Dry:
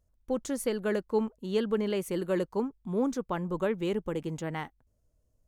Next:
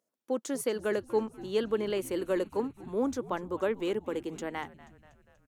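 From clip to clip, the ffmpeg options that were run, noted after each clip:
-filter_complex "[0:a]highpass=f=240:w=0.5412,highpass=f=240:w=1.3066,asplit=6[s0][s1][s2][s3][s4][s5];[s1]adelay=241,afreqshift=-88,volume=0.119[s6];[s2]adelay=482,afreqshift=-176,volume=0.0716[s7];[s3]adelay=723,afreqshift=-264,volume=0.0427[s8];[s4]adelay=964,afreqshift=-352,volume=0.0257[s9];[s5]adelay=1205,afreqshift=-440,volume=0.0155[s10];[s0][s6][s7][s8][s9][s10]amix=inputs=6:normalize=0"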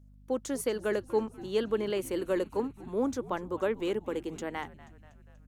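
-af "aeval=exprs='val(0)+0.002*(sin(2*PI*50*n/s)+sin(2*PI*2*50*n/s)/2+sin(2*PI*3*50*n/s)/3+sin(2*PI*4*50*n/s)/4+sin(2*PI*5*50*n/s)/5)':c=same"

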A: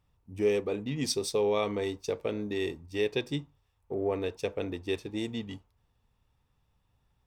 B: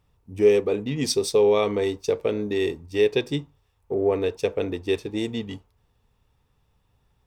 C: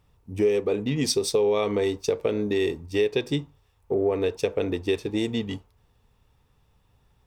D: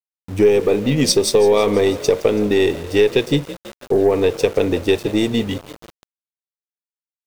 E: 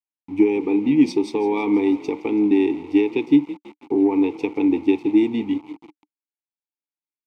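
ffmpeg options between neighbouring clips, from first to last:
-af "equalizer=f=430:t=o:w=0.4:g=4.5,volume=1.88"
-af "acompressor=threshold=0.0631:ratio=3,volume=1.41"
-filter_complex "[0:a]asplit=8[s0][s1][s2][s3][s4][s5][s6][s7];[s1]adelay=165,afreqshift=34,volume=0.141[s8];[s2]adelay=330,afreqshift=68,volume=0.0923[s9];[s3]adelay=495,afreqshift=102,volume=0.0596[s10];[s4]adelay=660,afreqshift=136,volume=0.0389[s11];[s5]adelay=825,afreqshift=170,volume=0.0251[s12];[s6]adelay=990,afreqshift=204,volume=0.0164[s13];[s7]adelay=1155,afreqshift=238,volume=0.0106[s14];[s0][s8][s9][s10][s11][s12][s13][s14]amix=inputs=8:normalize=0,aeval=exprs='val(0)*gte(abs(val(0)),0.00891)':c=same,aeval=exprs='0.316*(cos(1*acos(clip(val(0)/0.316,-1,1)))-cos(1*PI/2))+0.00794*(cos(8*acos(clip(val(0)/0.316,-1,1)))-cos(8*PI/2))':c=same,volume=2.66"
-filter_complex "[0:a]asplit=3[s0][s1][s2];[s0]bandpass=f=300:t=q:w=8,volume=1[s3];[s1]bandpass=f=870:t=q:w=8,volume=0.501[s4];[s2]bandpass=f=2240:t=q:w=8,volume=0.355[s5];[s3][s4][s5]amix=inputs=3:normalize=0,volume=2.51"

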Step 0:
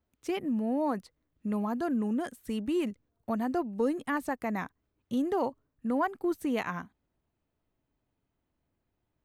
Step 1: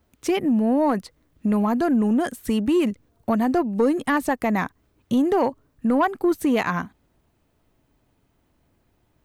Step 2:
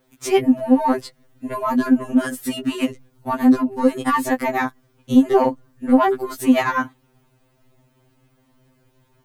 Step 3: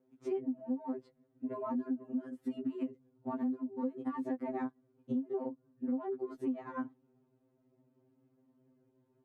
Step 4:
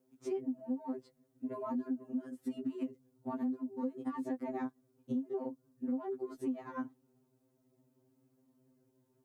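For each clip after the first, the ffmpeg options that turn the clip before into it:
-filter_complex "[0:a]asplit=2[s0][s1];[s1]acompressor=threshold=0.0141:ratio=6,volume=1.33[s2];[s0][s2]amix=inputs=2:normalize=0,asoftclip=type=tanh:threshold=0.126,volume=2.37"
-filter_complex "[0:a]asplit=2[s0][s1];[s1]alimiter=limit=0.1:level=0:latency=1:release=15,volume=1.12[s2];[s0][s2]amix=inputs=2:normalize=0,afftfilt=real='re*2.45*eq(mod(b,6),0)':imag='im*2.45*eq(mod(b,6),0)':win_size=2048:overlap=0.75,volume=1.26"
-af "bandpass=f=310:t=q:w=1.4:csg=0,acompressor=threshold=0.0447:ratio=8,volume=0.531"
-af "bass=f=250:g=1,treble=f=4000:g=11,volume=0.841"

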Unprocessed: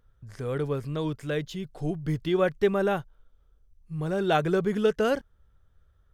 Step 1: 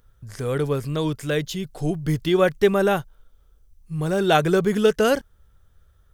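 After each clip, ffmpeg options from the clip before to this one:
-af "highshelf=f=5100:g=10.5,volume=1.88"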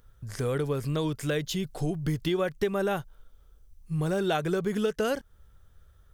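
-af "acompressor=threshold=0.0562:ratio=5"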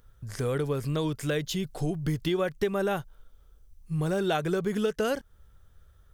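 -af anull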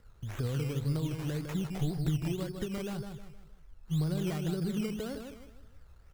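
-filter_complex "[0:a]acrossover=split=230[s0][s1];[s1]acompressor=threshold=0.00794:ratio=6[s2];[s0][s2]amix=inputs=2:normalize=0,aecho=1:1:156|312|468|624:0.501|0.185|0.0686|0.0254,acrusher=samples=13:mix=1:aa=0.000001:lfo=1:lforange=7.8:lforate=1.9"

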